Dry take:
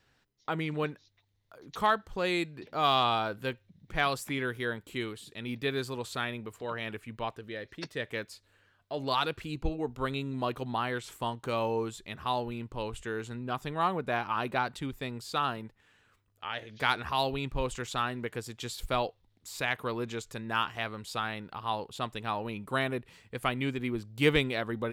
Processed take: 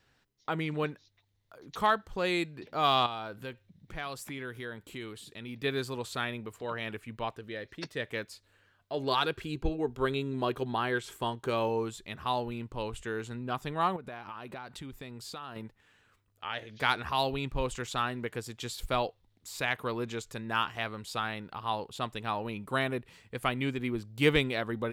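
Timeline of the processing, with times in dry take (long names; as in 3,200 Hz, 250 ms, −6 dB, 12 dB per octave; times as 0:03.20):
0:03.06–0:05.64: downward compressor 2 to 1, threshold −41 dBFS
0:08.94–0:11.69: hollow resonant body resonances 390/1,600/3,300 Hz, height 8 dB
0:13.96–0:15.56: downward compressor, threshold −39 dBFS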